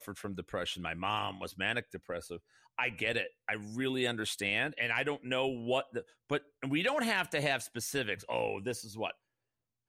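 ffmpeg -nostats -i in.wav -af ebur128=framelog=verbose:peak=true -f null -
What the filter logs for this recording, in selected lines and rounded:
Integrated loudness:
  I:         -34.3 LUFS
  Threshold: -44.5 LUFS
Loudness range:
  LRA:         3.1 LU
  Threshold: -54.0 LUFS
  LRA low:   -35.9 LUFS
  LRA high:  -32.9 LUFS
True peak:
  Peak:      -18.4 dBFS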